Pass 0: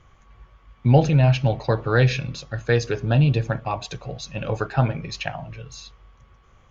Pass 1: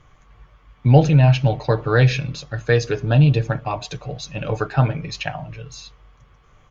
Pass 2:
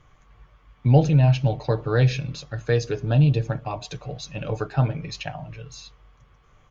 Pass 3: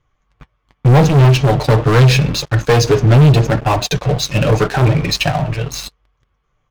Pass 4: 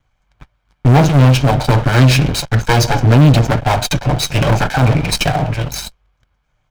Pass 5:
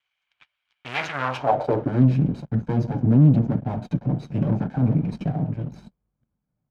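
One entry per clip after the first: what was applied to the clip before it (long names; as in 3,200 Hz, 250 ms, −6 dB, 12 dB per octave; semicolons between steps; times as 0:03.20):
comb filter 6.7 ms, depth 34%; level +1.5 dB
dynamic equaliser 1,700 Hz, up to −5 dB, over −34 dBFS, Q 0.7; level −3.5 dB
leveller curve on the samples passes 5; flanger 0.81 Hz, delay 1.9 ms, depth 7.1 ms, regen −51%; level +4 dB
lower of the sound and its delayed copy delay 1.3 ms; in parallel at −7 dB: hard clipping −12 dBFS, distortion −9 dB; on the sum: level −1 dB
band-pass filter sweep 2,800 Hz → 210 Hz, 0:00.92–0:02.03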